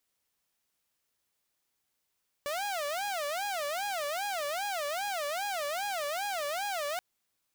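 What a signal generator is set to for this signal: siren wail 574–823 Hz 2.5/s saw -29 dBFS 4.53 s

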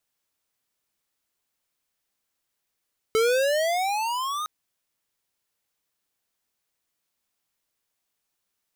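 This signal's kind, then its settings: gliding synth tone square, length 1.31 s, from 434 Hz, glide +18.5 st, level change -9.5 dB, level -20 dB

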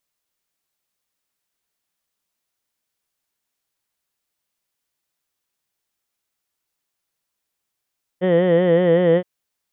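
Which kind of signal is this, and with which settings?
formant vowel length 1.02 s, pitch 177 Hz, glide -0.5 st, F1 490 Hz, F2 1900 Hz, F3 3100 Hz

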